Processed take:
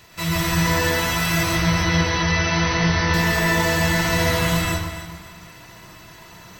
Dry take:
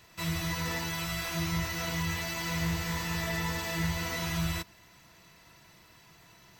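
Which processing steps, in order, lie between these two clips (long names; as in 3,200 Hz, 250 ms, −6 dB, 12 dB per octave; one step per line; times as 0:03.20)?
0:01.43–0:03.14: linear-phase brick-wall low-pass 6,300 Hz
delay that swaps between a low-pass and a high-pass 135 ms, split 1,000 Hz, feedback 58%, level −6.5 dB
dense smooth reverb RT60 0.79 s, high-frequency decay 0.5×, pre-delay 110 ms, DRR −3.5 dB
level +8.5 dB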